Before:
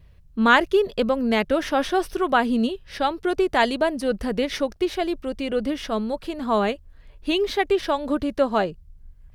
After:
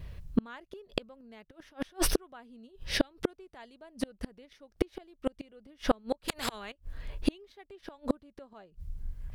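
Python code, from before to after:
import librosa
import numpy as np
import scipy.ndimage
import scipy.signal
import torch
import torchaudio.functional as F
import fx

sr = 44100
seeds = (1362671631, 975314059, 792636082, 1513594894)

y = fx.over_compress(x, sr, threshold_db=-27.0, ratio=-1.0, at=(1.5, 2.12), fade=0.02)
y = fx.peak_eq(y, sr, hz=fx.line((2.66, 3000.0), (3.1, 830.0)), db=-8.0, octaves=0.89, at=(2.66, 3.1), fade=0.02)
y = fx.gate_flip(y, sr, shuts_db=-19.0, range_db=-38)
y = fx.spectral_comp(y, sr, ratio=4.0, at=(6.28, 6.72))
y = y * librosa.db_to_amplitude(7.5)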